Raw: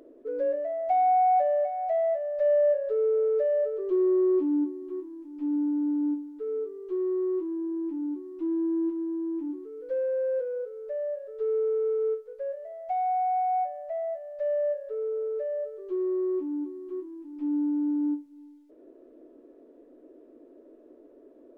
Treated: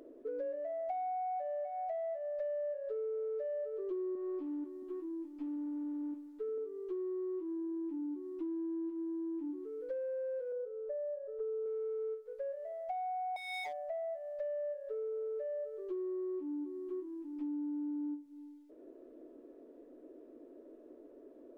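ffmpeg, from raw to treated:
-filter_complex "[0:a]asettb=1/sr,asplit=3[a][b][c];[a]atrim=end=4.144[d];[b]atrim=start=4.14:end=6.58,asetpts=PTS-STARTPTS,afade=t=in:d=0.004:c=qsin,afade=t=out:st=2.436:d=0.004:c=qsin,asplit=2[e][f];[f]adelay=12,volume=-5dB[g];[e][g]amix=inputs=2:normalize=0,atrim=end_sample=107604[h];[c]atrim=start=6.576[i];[d][h]acrossfade=d=0.004:c1=hsin:c2=qsin[j];[j][i]acrossfade=d=0.004:c1=qsin:c2=hsin,asettb=1/sr,asplit=3[k][l][m];[k]atrim=end=10.524[n];[l]atrim=start=10.52:end=11.66,asetpts=PTS-STARTPTS,afade=t=in:d=0.004:c=qsin,afade=t=out:st=1.136:d=0.004:c=qsin,lowpass=1.2k[o];[m]atrim=start=11.656[p];[n][o]acrossfade=d=0.004:c1=hsin:c2=qsin[q];[q][p]acrossfade=d=0.004:c1=qsin:c2=hsin,asettb=1/sr,asplit=3[r][s][t];[r]atrim=end=13.364[u];[s]atrim=start=13.36:end=13.8,asetpts=PTS-STARTPTS,afade=t=in:d=0.004:c=qsin,afade=t=out:st=0.436:d=0.004:c=qsin,aeval=exprs='0.0251*(abs(mod(val(0)/0.0251+3,4)-2)-1)':c=same[v];[t]atrim=start=13.796[w];[u][v]acrossfade=d=0.004:c1=hsin:c2=qsin[x];[x][w]acrossfade=d=0.004:c1=qsin:c2=hsin,acompressor=threshold=-35dB:ratio=6,volume=-2dB"

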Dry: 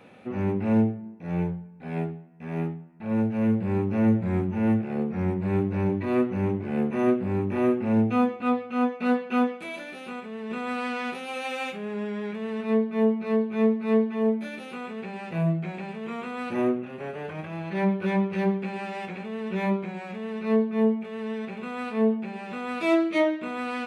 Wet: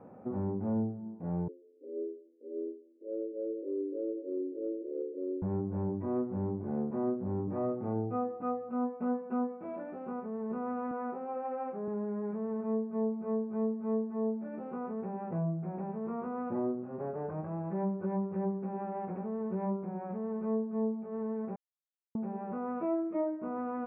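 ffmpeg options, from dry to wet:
-filter_complex "[0:a]asettb=1/sr,asplit=3[a][b][c];[a]atrim=end=1.484[d];[b]atrim=start=1.48:end=5.42,asetpts=PTS-STARTPTS,afade=t=in:d=0.004:c=qsin,afade=t=out:st=3.936:d=0.004:c=qsin,asuperpass=centerf=390:order=20:qfactor=1.3[e];[c]atrim=start=5.416[f];[d][e]acrossfade=d=0.004:c1=hsin:c2=qsin[g];[g][f]acrossfade=d=0.004:c1=qsin:c2=hsin,asettb=1/sr,asplit=3[h][i][j];[h]atrim=end=7.474[k];[i]atrim=start=7.47:end=8.69,asetpts=PTS-STARTPTS,afade=t=in:d=0.004:c=qsin,afade=t=out:st=1.216:d=0.004:c=qsin,aecho=1:1:6.5:0.73,atrim=end_sample=53802[l];[j]atrim=start=8.686[m];[k][l]acrossfade=d=0.004:c1=hsin:c2=qsin[n];[n][m]acrossfade=d=0.004:c1=qsin:c2=hsin,asettb=1/sr,asplit=3[o][p][q];[o]atrim=end=10.914[r];[p]atrim=start=10.91:end=11.88,asetpts=PTS-STARTPTS,afade=t=in:d=0.004:c=qsin,afade=t=out:st=0.966:d=0.004:c=qsin,highpass=230,lowpass=2.2k[s];[q]atrim=start=11.876[t];[r][s]acrossfade=d=0.004:c1=hsin:c2=qsin[u];[u][t]acrossfade=d=0.004:c1=qsin:c2=hsin,asplit=3[v][w][x];[v]atrim=end=21.56,asetpts=PTS-STARTPTS,afade=t=out:st=21.556:d=0.004:c=hsin[y];[w]atrim=start=21.56:end=22.15,asetpts=PTS-STARTPTS,volume=0[z];[x]atrim=start=22.15,asetpts=PTS-STARTPTS,afade=t=in:d=0.004:c=hsin[aa];[y][z][aa]concat=n=3:v=0:a=1,lowpass=f=1.1k:w=0.5412,lowpass=f=1.1k:w=1.3066,acompressor=threshold=-34dB:ratio=2.5"

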